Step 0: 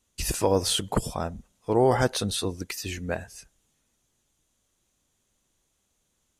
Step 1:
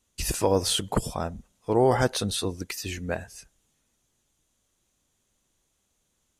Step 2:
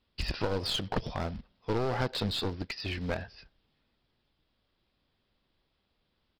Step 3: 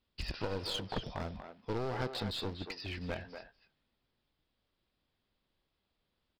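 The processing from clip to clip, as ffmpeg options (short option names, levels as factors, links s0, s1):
-af anull
-af "acompressor=threshold=0.0631:ratio=4,aresample=11025,acrusher=bits=4:mode=log:mix=0:aa=0.000001,aresample=44100,aeval=exprs='clip(val(0),-1,0.0266)':c=same"
-filter_complex "[0:a]asplit=2[s0][s1];[s1]adelay=240,highpass=300,lowpass=3400,asoftclip=type=hard:threshold=0.075,volume=0.447[s2];[s0][s2]amix=inputs=2:normalize=0,volume=0.501"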